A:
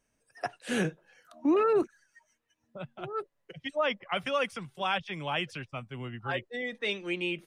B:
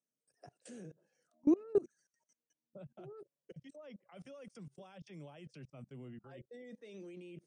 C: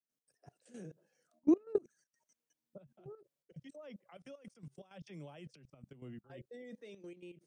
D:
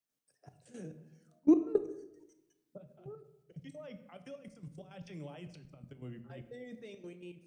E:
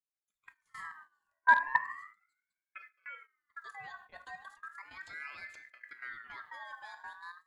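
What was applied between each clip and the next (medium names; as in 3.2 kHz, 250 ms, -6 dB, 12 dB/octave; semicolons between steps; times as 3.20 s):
Chebyshev band-pass 130–9300 Hz, order 5; level held to a coarse grid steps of 24 dB; high-order bell 1.8 kHz -12.5 dB 2.6 oct
trance gate ".x.x.xx.xxxxxxx" 162 bpm -12 dB; trim +1.5 dB
simulated room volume 330 m³, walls mixed, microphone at 0.42 m; trim +2.5 dB
rattle on loud lows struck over -36 dBFS, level -33 dBFS; gate -54 dBFS, range -17 dB; ring modulator with a swept carrier 1.6 kHz, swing 20%, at 0.36 Hz; trim +3.5 dB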